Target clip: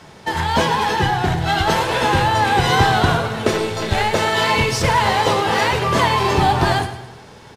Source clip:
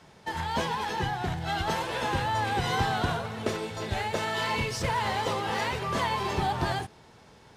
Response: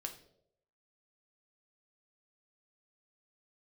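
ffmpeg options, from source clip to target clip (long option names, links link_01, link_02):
-filter_complex "[0:a]asplit=2[link_01][link_02];[1:a]atrim=start_sample=2205,asetrate=39690,aresample=44100[link_03];[link_02][link_03]afir=irnorm=-1:irlink=0,volume=0dB[link_04];[link_01][link_04]amix=inputs=2:normalize=0,asettb=1/sr,asplit=3[link_05][link_06][link_07];[link_05]atrim=end=3.534[link_08];[link_06]atrim=start=3.53:end=4.14,asetpts=PTS-STARTPTS,afade=type=in:duration=0.004:curve=qsin,afade=type=out:start_time=0.606:duration=0.004:curve=qsin,aeval=exprs='0.237*(cos(1*acos(clip(val(0)/0.237,-1,1)))-cos(1*PI/2))+0.0237*(cos(4*acos(clip(val(0)/0.237,-1,1)))-cos(4*PI/2))+0.00188*(cos(7*acos(clip(val(0)/0.237,-1,1)))-cos(7*PI/2))':channel_layout=same[link_09];[link_07]atrim=start=4.136[link_10];[link_08][link_09]acrossfade=duration=0.004:curve1=hsin:curve2=qsin[link_11];[link_11][link_10]acrossfade=duration=0.004:curve1=qsin:curve2=hsin,asplit=2[link_12][link_13];[link_13]aecho=0:1:106|212|318|424|530:0.224|0.105|0.0495|0.0232|0.0109[link_14];[link_12][link_14]amix=inputs=2:normalize=0,volume=7dB"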